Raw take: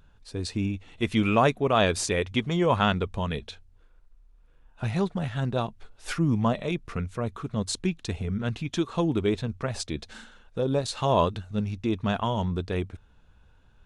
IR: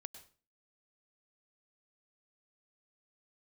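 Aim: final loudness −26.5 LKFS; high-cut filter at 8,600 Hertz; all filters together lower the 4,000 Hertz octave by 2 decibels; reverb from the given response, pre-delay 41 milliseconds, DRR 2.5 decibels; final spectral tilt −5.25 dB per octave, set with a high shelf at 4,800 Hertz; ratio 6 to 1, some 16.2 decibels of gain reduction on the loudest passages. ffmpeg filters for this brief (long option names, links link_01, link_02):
-filter_complex "[0:a]lowpass=8600,equalizer=frequency=4000:width_type=o:gain=-5.5,highshelf=frequency=4800:gain=7,acompressor=threshold=-35dB:ratio=6,asplit=2[link_01][link_02];[1:a]atrim=start_sample=2205,adelay=41[link_03];[link_02][link_03]afir=irnorm=-1:irlink=0,volume=2.5dB[link_04];[link_01][link_04]amix=inputs=2:normalize=0,volume=11dB"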